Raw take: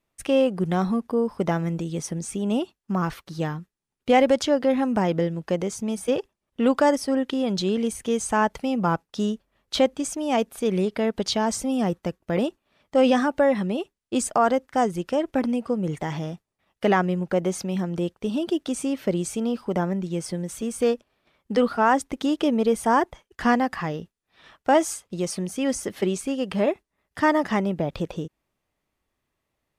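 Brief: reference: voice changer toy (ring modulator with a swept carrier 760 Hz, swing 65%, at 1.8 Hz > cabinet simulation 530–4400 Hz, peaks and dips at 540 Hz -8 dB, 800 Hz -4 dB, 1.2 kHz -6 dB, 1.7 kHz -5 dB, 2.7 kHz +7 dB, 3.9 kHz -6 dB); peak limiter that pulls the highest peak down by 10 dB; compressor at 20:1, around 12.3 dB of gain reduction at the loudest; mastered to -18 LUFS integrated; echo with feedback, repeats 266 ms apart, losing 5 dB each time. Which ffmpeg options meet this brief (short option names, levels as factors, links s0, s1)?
-af "acompressor=threshold=0.0501:ratio=20,alimiter=limit=0.0631:level=0:latency=1,aecho=1:1:266|532|798|1064|1330|1596|1862:0.562|0.315|0.176|0.0988|0.0553|0.031|0.0173,aeval=exprs='val(0)*sin(2*PI*760*n/s+760*0.65/1.8*sin(2*PI*1.8*n/s))':c=same,highpass=530,equalizer=f=540:t=q:w=4:g=-8,equalizer=f=800:t=q:w=4:g=-4,equalizer=f=1200:t=q:w=4:g=-6,equalizer=f=1700:t=q:w=4:g=-5,equalizer=f=2700:t=q:w=4:g=7,equalizer=f=3900:t=q:w=4:g=-6,lowpass=f=4400:w=0.5412,lowpass=f=4400:w=1.3066,volume=12.6"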